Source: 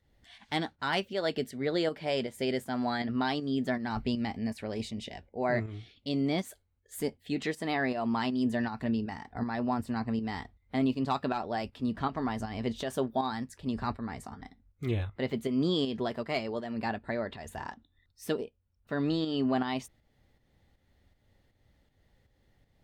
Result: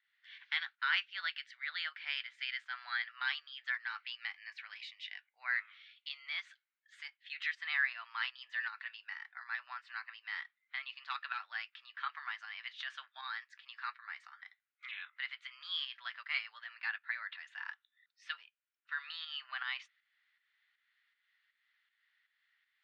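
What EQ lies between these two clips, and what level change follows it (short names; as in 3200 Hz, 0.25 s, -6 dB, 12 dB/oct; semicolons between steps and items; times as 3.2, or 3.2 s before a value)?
steep high-pass 1400 Hz 36 dB/oct; LPF 3400 Hz 12 dB/oct; air absorption 140 m; +5.0 dB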